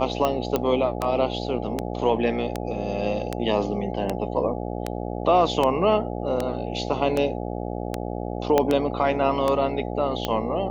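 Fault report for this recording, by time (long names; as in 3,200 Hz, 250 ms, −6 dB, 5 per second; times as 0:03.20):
mains buzz 60 Hz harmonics 14 −30 dBFS
scratch tick 78 rpm −10 dBFS
0:00.56: click −9 dBFS
0:08.58: click −6 dBFS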